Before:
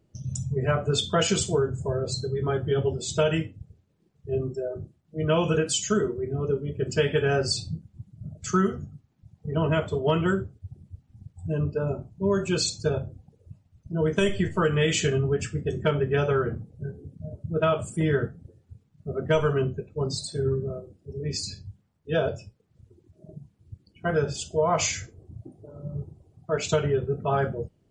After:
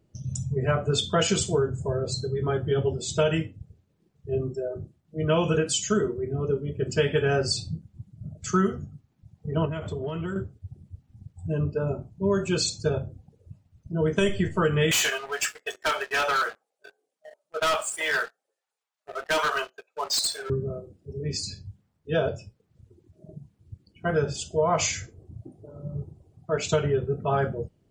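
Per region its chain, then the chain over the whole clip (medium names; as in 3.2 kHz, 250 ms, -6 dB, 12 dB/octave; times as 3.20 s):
9.65–10.36 s: bass shelf 160 Hz +7 dB + compression 10:1, threshold -27 dBFS
14.91–20.50 s: high-pass 750 Hz 24 dB/octave + waveshaping leveller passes 3 + overload inside the chain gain 21 dB
whole clip: none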